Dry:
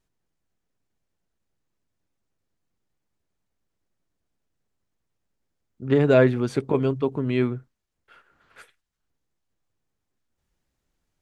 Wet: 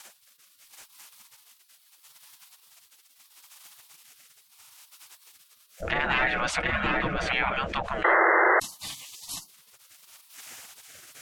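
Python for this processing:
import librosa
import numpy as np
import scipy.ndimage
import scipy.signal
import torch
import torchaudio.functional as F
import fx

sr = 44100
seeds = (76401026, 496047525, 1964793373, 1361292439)

p1 = fx.diode_clip(x, sr, knee_db=-16.0)
p2 = fx.graphic_eq_10(p1, sr, hz=(125, 500, 1000, 4000), db=(-11, 4, -10, -6))
p3 = p2 + fx.echo_single(p2, sr, ms=731, db=-3.5, dry=0)
p4 = fx.env_lowpass_down(p3, sr, base_hz=2500.0, full_db=-23.0)
p5 = fx.comb(p4, sr, ms=5.5, depth=0.63, at=(6.16, 7.24))
p6 = fx.spec_gate(p5, sr, threshold_db=-25, keep='weak')
p7 = fx.rotary(p6, sr, hz=0.75)
p8 = fx.spec_paint(p7, sr, seeds[0], shape='noise', start_s=8.04, length_s=0.56, low_hz=320.0, high_hz=2100.0, level_db=-26.0)
p9 = fx.env_flatten(p8, sr, amount_pct=70)
y = p9 * librosa.db_to_amplitude(5.0)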